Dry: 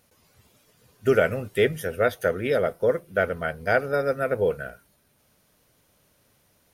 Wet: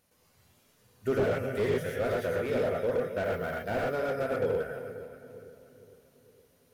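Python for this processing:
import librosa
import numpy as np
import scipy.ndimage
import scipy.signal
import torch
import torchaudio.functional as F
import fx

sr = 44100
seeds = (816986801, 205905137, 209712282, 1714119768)

y = fx.echo_split(x, sr, split_hz=430.0, low_ms=460, high_ms=266, feedback_pct=52, wet_db=-12.0)
y = fx.rev_gated(y, sr, seeds[0], gate_ms=140, shape='rising', drr_db=-1.0)
y = fx.resample_bad(y, sr, factor=3, down='none', up='hold', at=(3.24, 3.94))
y = fx.slew_limit(y, sr, full_power_hz=83.0)
y = y * librosa.db_to_amplitude(-8.0)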